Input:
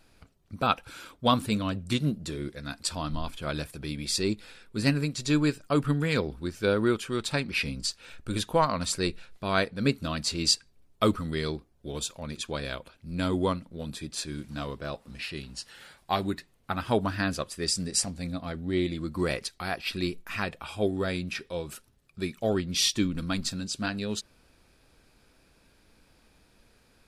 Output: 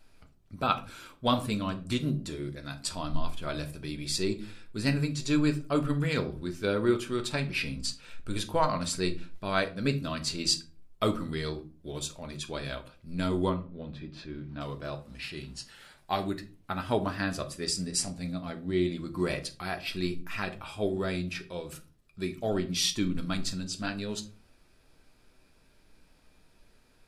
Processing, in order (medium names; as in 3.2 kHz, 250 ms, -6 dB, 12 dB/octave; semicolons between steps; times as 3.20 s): 13.49–14.61 s: distance through air 310 m; on a send: reverberation RT60 0.35 s, pre-delay 3 ms, DRR 5.5 dB; on the sum: trim -3.5 dB